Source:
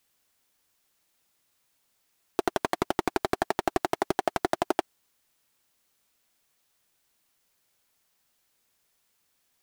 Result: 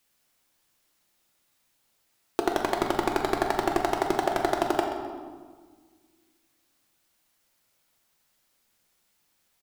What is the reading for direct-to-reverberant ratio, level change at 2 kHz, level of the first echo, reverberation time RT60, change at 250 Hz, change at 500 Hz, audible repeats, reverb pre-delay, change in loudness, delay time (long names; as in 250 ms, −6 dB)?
2.0 dB, +2.0 dB, −13.0 dB, 1.6 s, +3.0 dB, +3.0 dB, 1, 3 ms, +2.0 dB, 129 ms